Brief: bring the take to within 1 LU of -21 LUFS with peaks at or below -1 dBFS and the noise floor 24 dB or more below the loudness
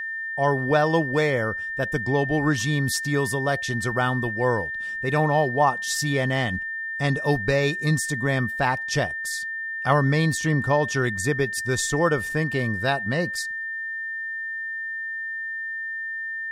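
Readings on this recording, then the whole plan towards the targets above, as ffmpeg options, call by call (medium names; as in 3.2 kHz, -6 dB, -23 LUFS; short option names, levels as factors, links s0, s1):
steady tone 1.8 kHz; tone level -28 dBFS; loudness -24.0 LUFS; peak level -6.5 dBFS; loudness target -21.0 LUFS
-> -af "bandreject=f=1800:w=30"
-af "volume=1.41"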